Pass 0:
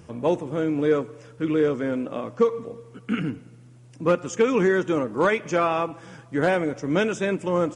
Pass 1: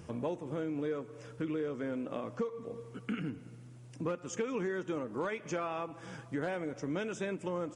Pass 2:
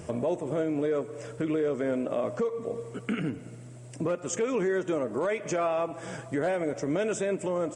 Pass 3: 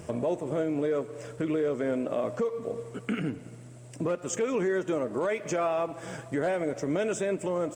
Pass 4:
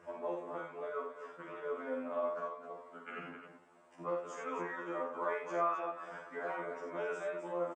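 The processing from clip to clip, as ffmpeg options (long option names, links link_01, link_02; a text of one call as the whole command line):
ffmpeg -i in.wav -af "acompressor=threshold=-32dB:ratio=4,volume=-2.5dB" out.wav
ffmpeg -i in.wav -af "equalizer=frequency=400:width_type=o:width=0.33:gain=5,equalizer=frequency=630:width_type=o:width=0.33:gain=11,equalizer=frequency=2000:width_type=o:width=0.33:gain=3,equalizer=frequency=8000:width_type=o:width=0.33:gain=11,alimiter=level_in=2dB:limit=-24dB:level=0:latency=1,volume=-2dB,volume=6dB" out.wav
ffmpeg -i in.wav -af "aeval=exprs='sgn(val(0))*max(abs(val(0))-0.00119,0)':channel_layout=same" out.wav
ffmpeg -i in.wav -filter_complex "[0:a]bandpass=frequency=1100:width_type=q:width=2.1:csg=0,asplit=2[link_01][link_02];[link_02]aecho=0:1:46|82|261:0.631|0.501|0.355[link_03];[link_01][link_03]amix=inputs=2:normalize=0,afftfilt=real='re*2*eq(mod(b,4),0)':imag='im*2*eq(mod(b,4),0)':win_size=2048:overlap=0.75,volume=1dB" out.wav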